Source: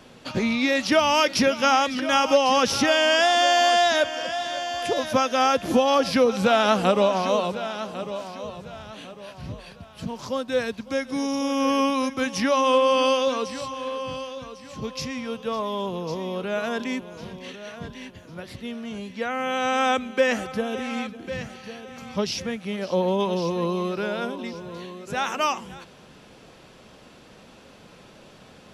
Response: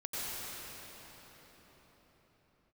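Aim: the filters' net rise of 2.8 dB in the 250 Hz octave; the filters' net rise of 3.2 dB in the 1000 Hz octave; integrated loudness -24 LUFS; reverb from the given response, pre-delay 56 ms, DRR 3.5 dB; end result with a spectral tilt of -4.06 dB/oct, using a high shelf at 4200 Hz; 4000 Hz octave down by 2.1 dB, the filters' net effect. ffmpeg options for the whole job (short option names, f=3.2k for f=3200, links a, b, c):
-filter_complex "[0:a]equalizer=f=250:t=o:g=3,equalizer=f=1k:t=o:g=4,equalizer=f=4k:t=o:g=-7.5,highshelf=f=4.2k:g=7,asplit=2[a][b];[1:a]atrim=start_sample=2205,adelay=56[c];[b][c]afir=irnorm=-1:irlink=0,volume=-8.5dB[d];[a][d]amix=inputs=2:normalize=0,volume=-4dB"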